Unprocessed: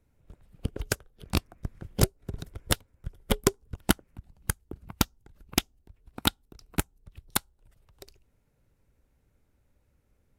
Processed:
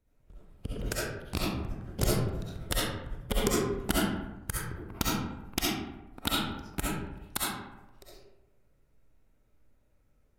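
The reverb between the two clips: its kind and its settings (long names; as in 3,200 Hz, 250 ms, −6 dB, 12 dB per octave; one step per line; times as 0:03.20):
comb and all-pass reverb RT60 0.99 s, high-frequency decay 0.5×, pre-delay 25 ms, DRR −7 dB
level −7.5 dB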